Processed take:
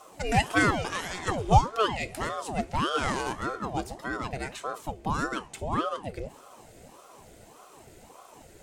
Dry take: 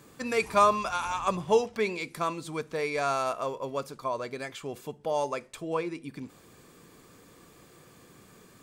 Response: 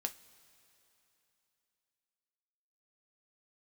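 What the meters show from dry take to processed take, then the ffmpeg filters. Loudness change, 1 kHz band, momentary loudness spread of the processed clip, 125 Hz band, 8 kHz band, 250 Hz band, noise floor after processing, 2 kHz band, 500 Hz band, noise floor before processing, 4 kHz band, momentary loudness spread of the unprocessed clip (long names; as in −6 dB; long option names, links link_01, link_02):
+1.0 dB, +1.0 dB, 12 LU, +11.0 dB, +3.0 dB, +4.5 dB, −53 dBFS, +5.0 dB, −4.0 dB, −56 dBFS, +5.0 dB, 14 LU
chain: -filter_complex "[0:a]equalizer=frequency=125:width_type=o:width=1:gain=9,equalizer=frequency=250:width_type=o:width=1:gain=4,equalizer=frequency=500:width_type=o:width=1:gain=5,equalizer=frequency=1000:width_type=o:width=1:gain=-9,equalizer=frequency=2000:width_type=o:width=1:gain=5,equalizer=frequency=8000:width_type=o:width=1:gain=6,asplit=2[link_01][link_02];[1:a]atrim=start_sample=2205[link_03];[link_02][link_03]afir=irnorm=-1:irlink=0,volume=5dB[link_04];[link_01][link_04]amix=inputs=2:normalize=0,aeval=exprs='val(0)*sin(2*PI*560*n/s+560*0.65/1.7*sin(2*PI*1.7*n/s))':channel_layout=same,volume=-7dB"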